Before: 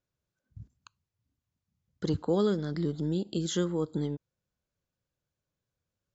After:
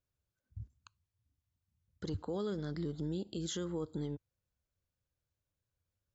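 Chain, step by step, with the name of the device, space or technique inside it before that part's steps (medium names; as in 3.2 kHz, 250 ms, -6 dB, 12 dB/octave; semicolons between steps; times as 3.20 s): car stereo with a boomy subwoofer (resonant low shelf 120 Hz +6.5 dB, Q 1.5; peak limiter -25 dBFS, peak gain reduction 7 dB); trim -5 dB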